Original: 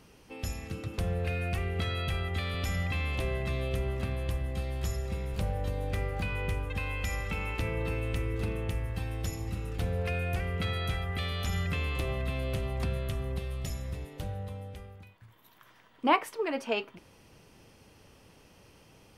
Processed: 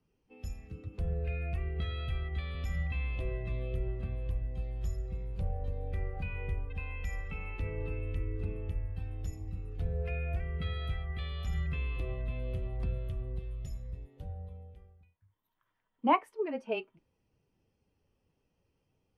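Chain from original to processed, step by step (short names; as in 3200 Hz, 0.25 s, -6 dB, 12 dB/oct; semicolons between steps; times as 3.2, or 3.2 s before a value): frequency shift -14 Hz; spectral expander 1.5:1; gain -3 dB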